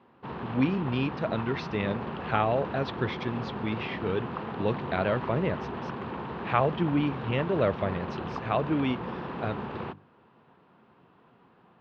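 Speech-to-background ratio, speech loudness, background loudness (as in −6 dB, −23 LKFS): 6.5 dB, −30.0 LKFS, −36.5 LKFS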